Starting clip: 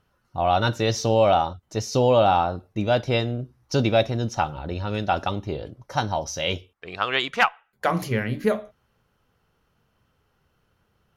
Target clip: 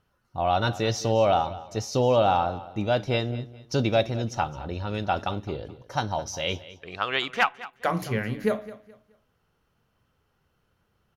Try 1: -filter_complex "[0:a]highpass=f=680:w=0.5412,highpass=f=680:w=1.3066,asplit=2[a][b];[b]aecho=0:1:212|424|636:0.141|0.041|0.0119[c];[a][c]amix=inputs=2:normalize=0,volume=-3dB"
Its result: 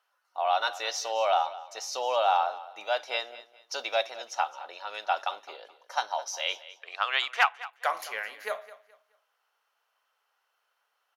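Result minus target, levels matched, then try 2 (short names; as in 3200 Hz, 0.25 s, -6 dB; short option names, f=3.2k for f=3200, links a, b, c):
500 Hz band -3.5 dB
-filter_complex "[0:a]asplit=2[a][b];[b]aecho=0:1:212|424|636:0.141|0.041|0.0119[c];[a][c]amix=inputs=2:normalize=0,volume=-3dB"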